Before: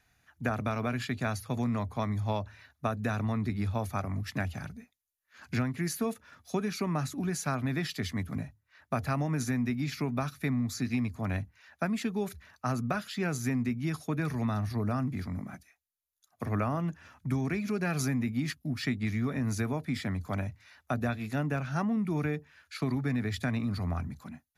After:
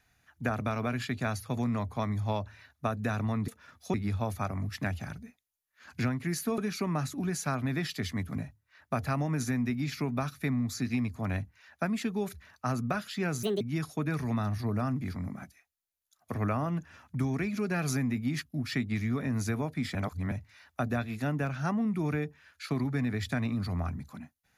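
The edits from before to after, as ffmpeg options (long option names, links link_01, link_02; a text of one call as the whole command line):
ffmpeg -i in.wav -filter_complex "[0:a]asplit=8[link_01][link_02][link_03][link_04][link_05][link_06][link_07][link_08];[link_01]atrim=end=3.482[link_09];[link_02]atrim=start=6.118:end=6.582[link_10];[link_03]atrim=start=3.478:end=6.122[link_11];[link_04]atrim=start=6.578:end=13.434[link_12];[link_05]atrim=start=13.43:end=13.72,asetpts=PTS-STARTPTS,asetrate=71883,aresample=44100,atrim=end_sample=7846,asetpts=PTS-STARTPTS[link_13];[link_06]atrim=start=13.716:end=20.062[link_14];[link_07]atrim=start=20.058:end=20.432,asetpts=PTS-STARTPTS,areverse[link_15];[link_08]atrim=start=20.428[link_16];[link_09][link_10]acrossfade=duration=0.004:curve1=hsin:curve2=hsin[link_17];[link_17][link_11]acrossfade=duration=0.004:curve1=hsin:curve2=hsin[link_18];[link_18][link_12]acrossfade=duration=0.004:curve1=hsin:curve2=hsin[link_19];[link_19][link_13]acrossfade=duration=0.004:curve1=hsin:curve2=hsin[link_20];[link_20][link_14]acrossfade=duration=0.004:curve1=hsin:curve2=hsin[link_21];[link_21][link_15]acrossfade=duration=0.004:curve1=hsin:curve2=hsin[link_22];[link_22][link_16]acrossfade=duration=0.004:curve1=hsin:curve2=hsin" out.wav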